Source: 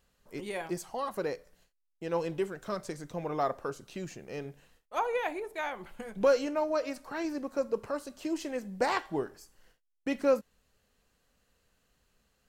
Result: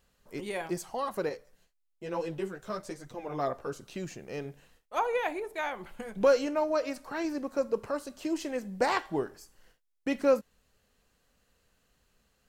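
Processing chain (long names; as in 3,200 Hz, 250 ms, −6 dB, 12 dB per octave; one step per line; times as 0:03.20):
0:01.29–0:03.73: multi-voice chorus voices 2, 1.1 Hz, delay 12 ms, depth 3.9 ms
level +1.5 dB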